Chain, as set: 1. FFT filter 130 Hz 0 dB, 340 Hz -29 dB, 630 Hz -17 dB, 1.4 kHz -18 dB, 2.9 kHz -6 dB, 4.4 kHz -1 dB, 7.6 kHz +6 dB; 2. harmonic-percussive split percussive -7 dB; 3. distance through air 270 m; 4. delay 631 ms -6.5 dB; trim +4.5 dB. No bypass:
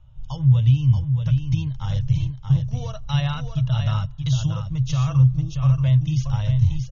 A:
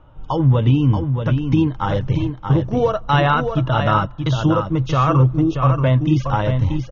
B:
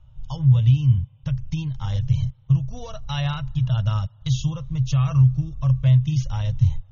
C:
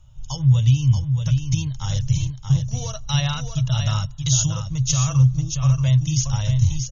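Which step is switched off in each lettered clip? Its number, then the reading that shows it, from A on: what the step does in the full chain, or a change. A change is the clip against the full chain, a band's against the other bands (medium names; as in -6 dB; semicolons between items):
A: 1, 125 Hz band -13.0 dB; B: 4, momentary loudness spread change +3 LU; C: 3, 4 kHz band +6.5 dB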